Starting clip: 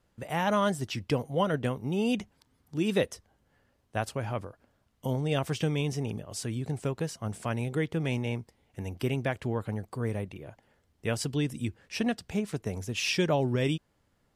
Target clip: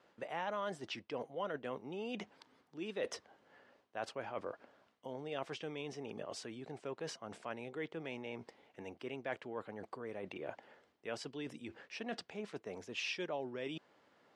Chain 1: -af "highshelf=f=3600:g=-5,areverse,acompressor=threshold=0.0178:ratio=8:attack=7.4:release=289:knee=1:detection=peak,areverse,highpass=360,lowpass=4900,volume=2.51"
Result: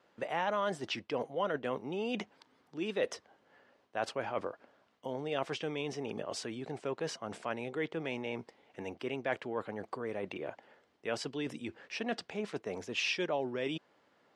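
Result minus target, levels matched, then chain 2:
compression: peak gain reduction -6.5 dB
-af "highshelf=f=3600:g=-5,areverse,acompressor=threshold=0.0075:ratio=8:attack=7.4:release=289:knee=1:detection=peak,areverse,highpass=360,lowpass=4900,volume=2.51"

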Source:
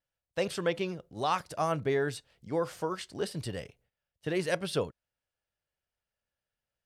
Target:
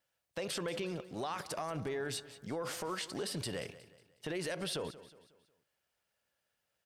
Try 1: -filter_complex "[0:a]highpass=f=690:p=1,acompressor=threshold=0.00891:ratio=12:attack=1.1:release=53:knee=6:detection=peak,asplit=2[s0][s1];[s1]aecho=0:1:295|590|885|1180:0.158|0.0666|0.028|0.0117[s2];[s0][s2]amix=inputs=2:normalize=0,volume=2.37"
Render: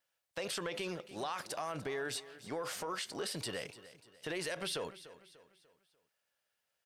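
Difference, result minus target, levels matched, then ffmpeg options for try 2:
echo 113 ms late; 250 Hz band -3.0 dB
-filter_complex "[0:a]highpass=f=230:p=1,acompressor=threshold=0.00891:ratio=12:attack=1.1:release=53:knee=6:detection=peak,asplit=2[s0][s1];[s1]aecho=0:1:182|364|546|728:0.158|0.0666|0.028|0.0117[s2];[s0][s2]amix=inputs=2:normalize=0,volume=2.37"

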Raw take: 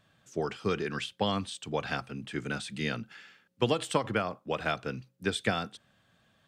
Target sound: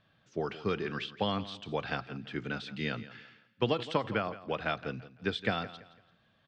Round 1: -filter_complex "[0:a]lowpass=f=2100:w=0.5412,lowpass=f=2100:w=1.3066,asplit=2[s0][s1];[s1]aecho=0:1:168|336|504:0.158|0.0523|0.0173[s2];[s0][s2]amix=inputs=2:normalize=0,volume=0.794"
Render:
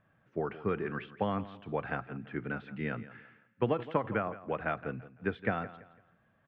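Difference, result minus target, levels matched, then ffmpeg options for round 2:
4 kHz band -14.5 dB
-filter_complex "[0:a]lowpass=f=4800:w=0.5412,lowpass=f=4800:w=1.3066,asplit=2[s0][s1];[s1]aecho=0:1:168|336|504:0.158|0.0523|0.0173[s2];[s0][s2]amix=inputs=2:normalize=0,volume=0.794"

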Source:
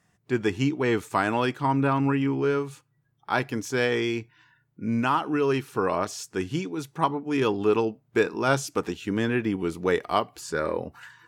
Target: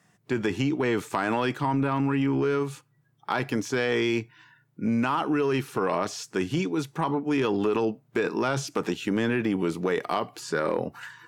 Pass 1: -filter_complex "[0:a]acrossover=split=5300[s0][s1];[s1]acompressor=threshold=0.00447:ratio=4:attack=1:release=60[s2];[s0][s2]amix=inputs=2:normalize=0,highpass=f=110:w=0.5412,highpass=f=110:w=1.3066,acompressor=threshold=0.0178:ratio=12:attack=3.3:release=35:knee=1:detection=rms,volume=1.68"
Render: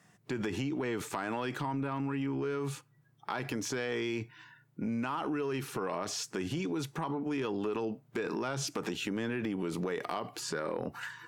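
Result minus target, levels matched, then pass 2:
compression: peak gain reduction +9 dB
-filter_complex "[0:a]acrossover=split=5300[s0][s1];[s1]acompressor=threshold=0.00447:ratio=4:attack=1:release=60[s2];[s0][s2]amix=inputs=2:normalize=0,highpass=f=110:w=0.5412,highpass=f=110:w=1.3066,acompressor=threshold=0.0562:ratio=12:attack=3.3:release=35:knee=1:detection=rms,volume=1.68"

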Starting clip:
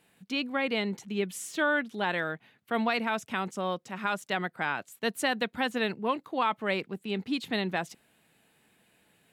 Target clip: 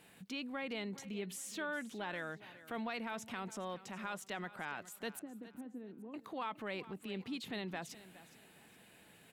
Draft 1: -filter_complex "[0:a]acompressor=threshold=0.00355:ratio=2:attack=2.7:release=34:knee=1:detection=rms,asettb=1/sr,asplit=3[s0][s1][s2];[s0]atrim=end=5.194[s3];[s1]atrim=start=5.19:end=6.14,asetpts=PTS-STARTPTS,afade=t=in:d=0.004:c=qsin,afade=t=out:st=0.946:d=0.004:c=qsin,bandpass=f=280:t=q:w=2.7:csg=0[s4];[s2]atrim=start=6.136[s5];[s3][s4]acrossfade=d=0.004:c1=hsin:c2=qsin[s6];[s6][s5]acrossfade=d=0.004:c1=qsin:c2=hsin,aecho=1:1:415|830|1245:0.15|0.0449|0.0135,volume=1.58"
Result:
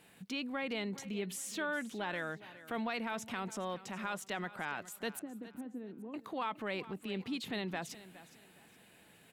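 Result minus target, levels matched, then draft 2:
compression: peak gain reduction -3.5 dB
-filter_complex "[0:a]acompressor=threshold=0.00158:ratio=2:attack=2.7:release=34:knee=1:detection=rms,asettb=1/sr,asplit=3[s0][s1][s2];[s0]atrim=end=5.194[s3];[s1]atrim=start=5.19:end=6.14,asetpts=PTS-STARTPTS,afade=t=in:d=0.004:c=qsin,afade=t=out:st=0.946:d=0.004:c=qsin,bandpass=f=280:t=q:w=2.7:csg=0[s4];[s2]atrim=start=6.136[s5];[s3][s4]acrossfade=d=0.004:c1=hsin:c2=qsin[s6];[s6][s5]acrossfade=d=0.004:c1=qsin:c2=hsin,aecho=1:1:415|830|1245:0.15|0.0449|0.0135,volume=1.58"

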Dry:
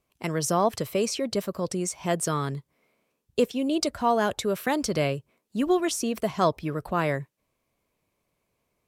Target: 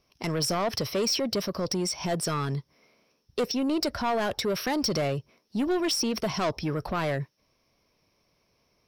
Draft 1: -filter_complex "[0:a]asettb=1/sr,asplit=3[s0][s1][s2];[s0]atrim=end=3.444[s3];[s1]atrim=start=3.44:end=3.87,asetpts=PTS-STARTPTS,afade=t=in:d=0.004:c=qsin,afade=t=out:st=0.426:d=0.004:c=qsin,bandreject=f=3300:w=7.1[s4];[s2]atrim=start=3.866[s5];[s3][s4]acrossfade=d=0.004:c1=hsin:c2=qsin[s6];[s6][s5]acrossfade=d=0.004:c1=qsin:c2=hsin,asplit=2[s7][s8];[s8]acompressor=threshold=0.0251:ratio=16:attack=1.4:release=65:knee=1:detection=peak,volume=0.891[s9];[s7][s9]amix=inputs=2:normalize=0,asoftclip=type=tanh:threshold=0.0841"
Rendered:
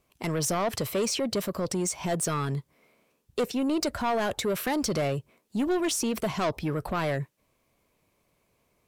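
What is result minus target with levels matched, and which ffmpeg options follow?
4 kHz band -4.0 dB
-filter_complex "[0:a]asettb=1/sr,asplit=3[s0][s1][s2];[s0]atrim=end=3.444[s3];[s1]atrim=start=3.44:end=3.87,asetpts=PTS-STARTPTS,afade=t=in:d=0.004:c=qsin,afade=t=out:st=0.426:d=0.004:c=qsin,bandreject=f=3300:w=7.1[s4];[s2]atrim=start=3.866[s5];[s3][s4]acrossfade=d=0.004:c1=hsin:c2=qsin[s6];[s6][s5]acrossfade=d=0.004:c1=qsin:c2=hsin,asplit=2[s7][s8];[s8]acompressor=threshold=0.0251:ratio=16:attack=1.4:release=65:knee=1:detection=peak,lowpass=f=5500:t=q:w=14,volume=0.891[s9];[s7][s9]amix=inputs=2:normalize=0,asoftclip=type=tanh:threshold=0.0841"

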